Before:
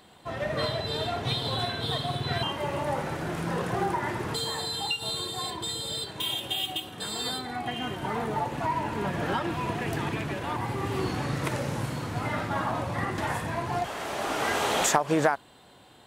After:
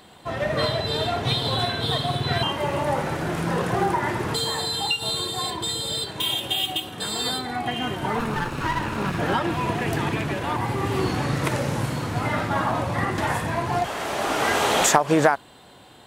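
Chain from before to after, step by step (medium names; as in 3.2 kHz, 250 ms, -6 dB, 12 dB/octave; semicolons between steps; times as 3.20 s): 8.19–9.19 s: comb filter that takes the minimum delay 0.75 ms; trim +5.5 dB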